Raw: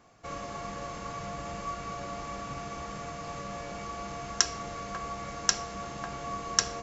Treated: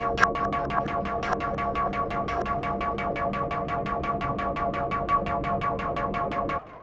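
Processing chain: whole clip reversed; LFO low-pass saw down 5.7 Hz 310–3100 Hz; warbling echo 0.208 s, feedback 67%, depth 210 cents, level -19.5 dB; gain +8.5 dB

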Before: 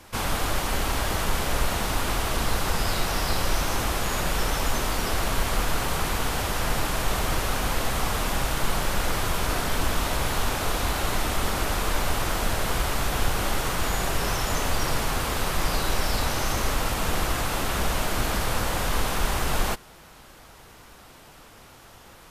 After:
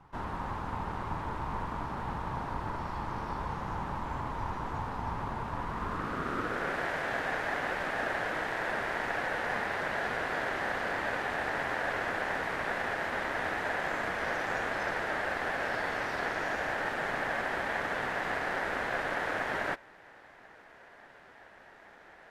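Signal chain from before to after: band-pass sweep 430 Hz -> 1200 Hz, 5.54–6.87; ring modulator 490 Hz; gain +5 dB

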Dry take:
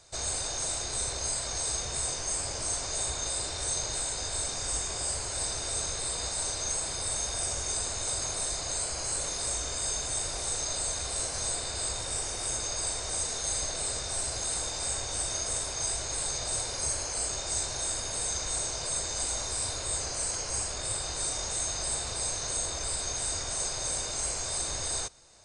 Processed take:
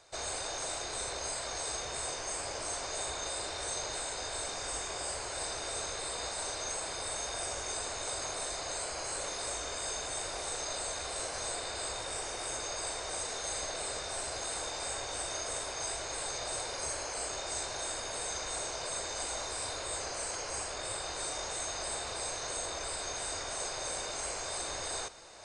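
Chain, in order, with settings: tone controls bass -11 dB, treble -9 dB; reverse; upward compressor, threshold -43 dBFS; reverse; gain +1 dB

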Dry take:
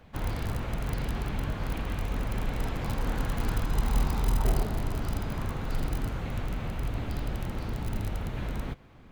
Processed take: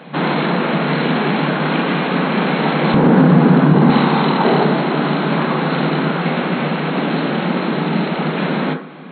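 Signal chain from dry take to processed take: FFT band-pass 140–4300 Hz; 2.94–3.9 tilt -4 dB/oct; reverb RT60 0.45 s, pre-delay 22 ms, DRR 5 dB; maximiser +20.5 dB; gain -1 dB

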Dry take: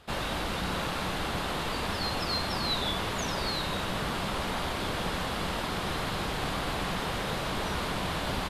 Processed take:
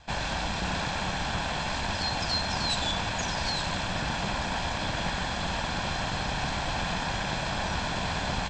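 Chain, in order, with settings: minimum comb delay 1.2 ms; steep low-pass 8100 Hz 96 dB/oct; gain +3 dB

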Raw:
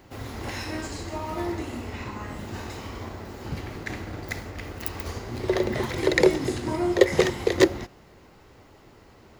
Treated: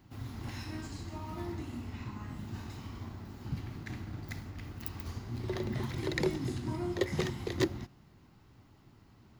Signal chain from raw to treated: ten-band EQ 125 Hz +7 dB, 250 Hz +4 dB, 500 Hz -11 dB, 2000 Hz -4 dB, 8000 Hz -4 dB; gain -8.5 dB

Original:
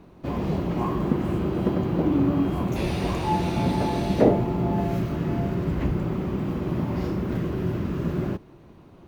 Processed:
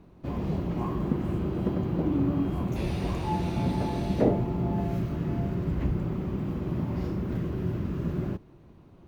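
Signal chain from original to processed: low shelf 200 Hz +6.5 dB; gain -7 dB

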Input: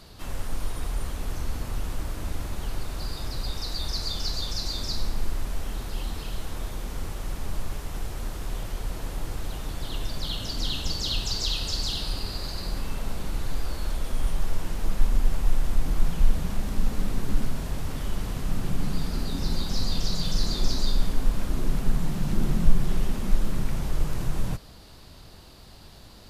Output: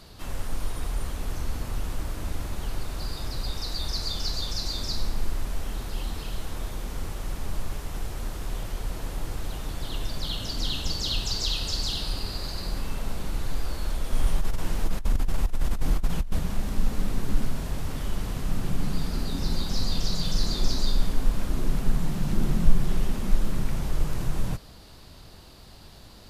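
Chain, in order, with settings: 14.12–16.39 negative-ratio compressor -19 dBFS, ratio -0.5

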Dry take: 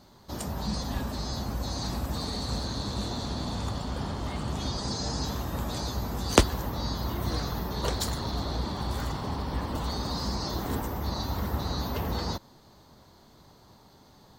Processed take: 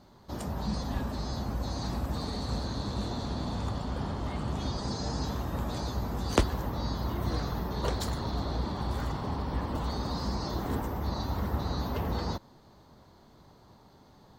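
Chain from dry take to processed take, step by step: high shelf 3100 Hz -8 dB; maximiser +7.5 dB; gain -8 dB

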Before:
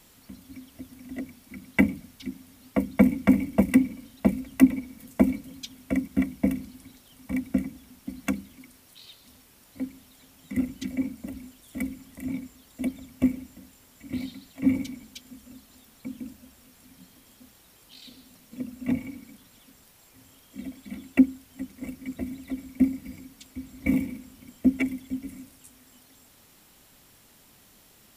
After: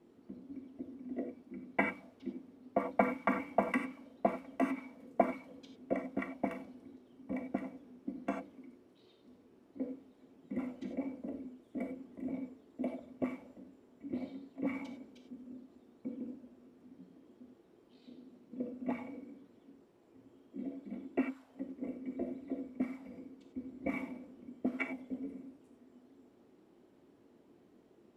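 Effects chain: non-linear reverb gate 0.12 s flat, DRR 4 dB; auto-wah 330–1200 Hz, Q 2.2, up, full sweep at -19.5 dBFS; gain +3.5 dB

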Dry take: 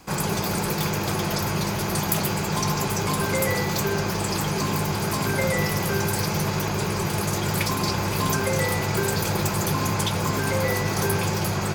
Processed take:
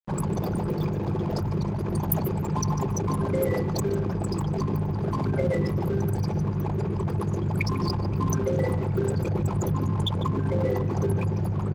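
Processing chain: formant sharpening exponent 3; crossover distortion -40 dBFS; echo 0.148 s -16 dB

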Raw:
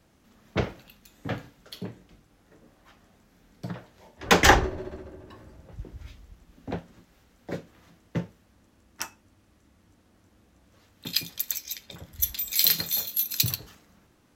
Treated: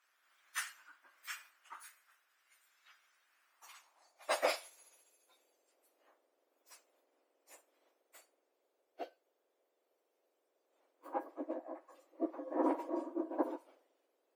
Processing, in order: spectrum mirrored in octaves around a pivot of 2000 Hz; differentiator; band-pass sweep 1500 Hz -> 480 Hz, 3.41–4.53; gain +14.5 dB

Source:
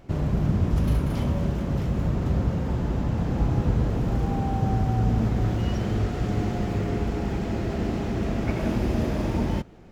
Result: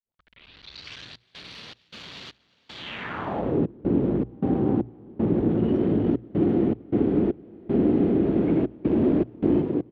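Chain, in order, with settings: tape start at the beginning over 1.91 s; low shelf 310 Hz +6.5 dB; hard clip -19 dBFS, distortion -9 dB; EQ curve 740 Hz 0 dB, 3300 Hz +11 dB, 6400 Hz -2 dB; on a send: frequency-shifting echo 0.356 s, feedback 51%, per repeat +56 Hz, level -6.5 dB; on the sum: step gate ".xxxxx.xx.xx." 78 bpm -24 dB; notches 60/120 Hz; band-pass sweep 4600 Hz -> 330 Hz, 2.74–3.62; notch 5100 Hz, Q 12; gain +8.5 dB

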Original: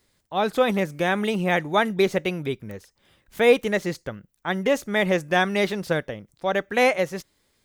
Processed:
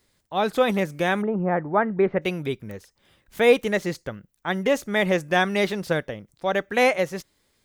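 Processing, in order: 1.21–2.21 LPF 1200 Hz -> 2100 Hz 24 dB/oct

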